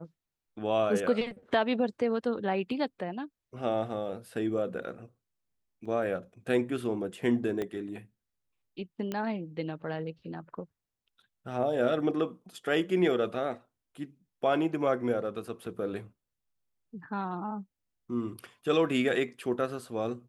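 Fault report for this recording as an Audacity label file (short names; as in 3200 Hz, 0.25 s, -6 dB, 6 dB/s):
5.850000	5.860000	gap 5.2 ms
7.620000	7.620000	pop -21 dBFS
9.120000	9.120000	pop -20 dBFS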